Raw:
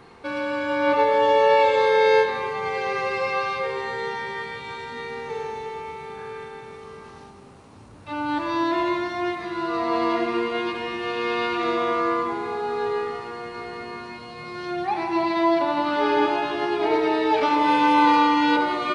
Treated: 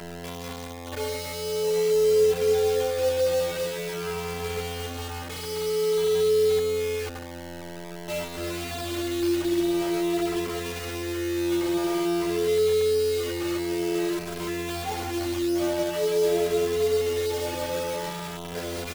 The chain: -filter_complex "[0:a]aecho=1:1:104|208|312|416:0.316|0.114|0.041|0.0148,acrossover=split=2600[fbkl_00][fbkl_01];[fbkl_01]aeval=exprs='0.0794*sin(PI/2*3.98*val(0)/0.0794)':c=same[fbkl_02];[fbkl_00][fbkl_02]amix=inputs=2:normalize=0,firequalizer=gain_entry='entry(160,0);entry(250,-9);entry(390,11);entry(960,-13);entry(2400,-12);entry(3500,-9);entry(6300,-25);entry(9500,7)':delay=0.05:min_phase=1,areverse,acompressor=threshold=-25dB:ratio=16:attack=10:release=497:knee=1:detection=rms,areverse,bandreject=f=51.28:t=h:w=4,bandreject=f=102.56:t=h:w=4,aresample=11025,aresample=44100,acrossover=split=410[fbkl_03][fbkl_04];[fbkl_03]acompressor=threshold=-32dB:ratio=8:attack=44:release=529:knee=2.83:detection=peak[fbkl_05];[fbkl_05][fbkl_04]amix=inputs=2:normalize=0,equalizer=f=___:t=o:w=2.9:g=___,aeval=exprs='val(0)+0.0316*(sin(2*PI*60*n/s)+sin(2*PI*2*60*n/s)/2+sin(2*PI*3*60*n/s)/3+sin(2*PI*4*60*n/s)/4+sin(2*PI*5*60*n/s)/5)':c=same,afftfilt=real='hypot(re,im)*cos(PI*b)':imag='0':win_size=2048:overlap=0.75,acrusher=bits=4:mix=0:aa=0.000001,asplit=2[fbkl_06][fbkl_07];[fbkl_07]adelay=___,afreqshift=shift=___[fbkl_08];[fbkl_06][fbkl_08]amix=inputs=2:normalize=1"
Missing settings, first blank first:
490, 10.5, 2.6, 0.49